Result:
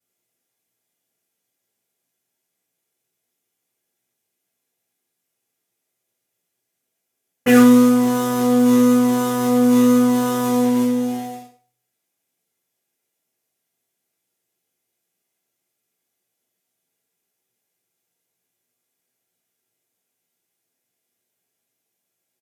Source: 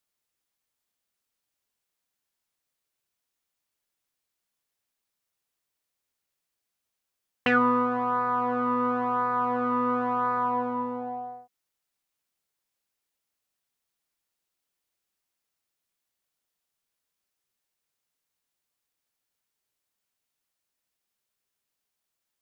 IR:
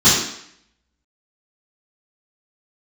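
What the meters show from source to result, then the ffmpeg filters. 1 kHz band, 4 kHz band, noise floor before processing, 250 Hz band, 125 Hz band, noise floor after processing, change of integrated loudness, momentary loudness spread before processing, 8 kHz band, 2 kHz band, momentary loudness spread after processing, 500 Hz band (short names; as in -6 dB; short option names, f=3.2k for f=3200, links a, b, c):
-1.0 dB, +13.0 dB, -84 dBFS, +17.0 dB, +14.0 dB, -79 dBFS, +10.5 dB, 10 LU, n/a, +3.0 dB, 11 LU, +10.5 dB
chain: -filter_complex "[0:a]acrusher=bits=2:mode=log:mix=0:aa=0.000001,aecho=1:1:98:0.168[a];[1:a]atrim=start_sample=2205,asetrate=83790,aresample=44100[b];[a][b]afir=irnorm=-1:irlink=0,volume=-14dB"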